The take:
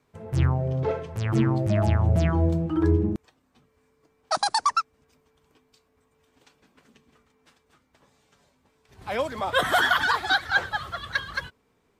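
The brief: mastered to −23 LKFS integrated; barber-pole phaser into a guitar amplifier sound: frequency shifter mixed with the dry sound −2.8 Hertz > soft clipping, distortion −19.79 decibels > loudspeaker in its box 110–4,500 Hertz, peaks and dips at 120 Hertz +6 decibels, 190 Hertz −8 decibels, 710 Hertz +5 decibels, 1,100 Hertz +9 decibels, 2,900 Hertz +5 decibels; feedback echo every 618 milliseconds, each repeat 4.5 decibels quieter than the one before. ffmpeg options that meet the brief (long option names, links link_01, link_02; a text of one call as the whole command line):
ffmpeg -i in.wav -filter_complex "[0:a]aecho=1:1:618|1236|1854|2472|3090|3708|4326|4944|5562:0.596|0.357|0.214|0.129|0.0772|0.0463|0.0278|0.0167|0.01,asplit=2[link_01][link_02];[link_02]afreqshift=-2.8[link_03];[link_01][link_03]amix=inputs=2:normalize=1,asoftclip=threshold=-15.5dB,highpass=110,equalizer=frequency=120:width_type=q:width=4:gain=6,equalizer=frequency=190:width_type=q:width=4:gain=-8,equalizer=frequency=710:width_type=q:width=4:gain=5,equalizer=frequency=1100:width_type=q:width=4:gain=9,equalizer=frequency=2900:width_type=q:width=4:gain=5,lowpass=frequency=4500:width=0.5412,lowpass=frequency=4500:width=1.3066,volume=3.5dB" out.wav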